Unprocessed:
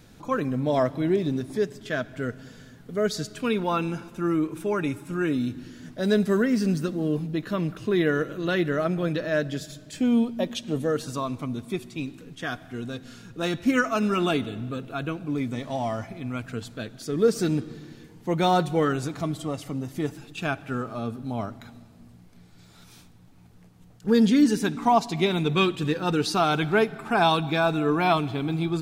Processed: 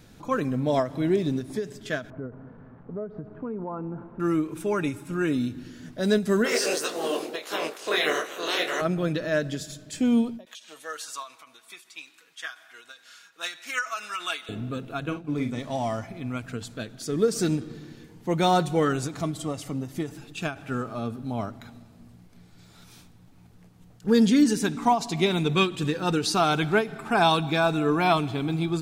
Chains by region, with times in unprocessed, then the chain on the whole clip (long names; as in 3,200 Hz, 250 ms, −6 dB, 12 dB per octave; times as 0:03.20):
0:02.10–0:04.20: spike at every zero crossing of −24.5 dBFS + low-pass filter 1,100 Hz 24 dB per octave + downward compressor 4 to 1, threshold −30 dBFS
0:06.44–0:08.80: ceiling on every frequency bin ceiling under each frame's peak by 27 dB + high-pass with resonance 410 Hz, resonance Q 2 + micro pitch shift up and down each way 55 cents
0:10.45–0:14.49: Chebyshev high-pass filter 1,400 Hz + comb filter 6.2 ms, depth 38%
0:15.00–0:15.59: downward expander −31 dBFS + high-shelf EQ 10,000 Hz −4.5 dB + double-tracking delay 47 ms −8 dB
whole clip: dynamic equaliser 7,700 Hz, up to +5 dB, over −51 dBFS, Q 0.95; every ending faded ahead of time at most 180 dB per second